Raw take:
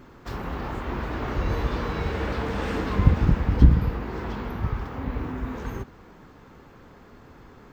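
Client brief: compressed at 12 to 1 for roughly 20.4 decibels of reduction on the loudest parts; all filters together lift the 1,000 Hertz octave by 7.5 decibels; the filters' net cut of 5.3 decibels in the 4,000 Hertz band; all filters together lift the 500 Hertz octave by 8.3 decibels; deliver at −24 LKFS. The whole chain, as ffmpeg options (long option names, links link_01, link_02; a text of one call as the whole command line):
ffmpeg -i in.wav -af "equalizer=frequency=500:width_type=o:gain=8.5,equalizer=frequency=1000:width_type=o:gain=7,equalizer=frequency=4000:width_type=o:gain=-8,acompressor=threshold=-28dB:ratio=12,volume=9.5dB" out.wav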